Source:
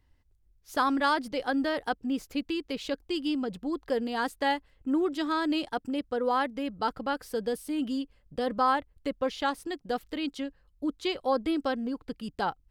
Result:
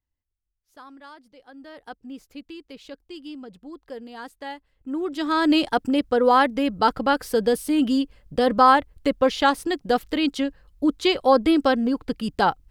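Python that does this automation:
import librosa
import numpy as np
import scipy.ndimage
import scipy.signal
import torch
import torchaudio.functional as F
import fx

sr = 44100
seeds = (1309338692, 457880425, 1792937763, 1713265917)

y = fx.gain(x, sr, db=fx.line((1.47, -19.0), (1.94, -8.0), (4.56, -8.0), (4.99, -1.0), (5.5, 10.0)))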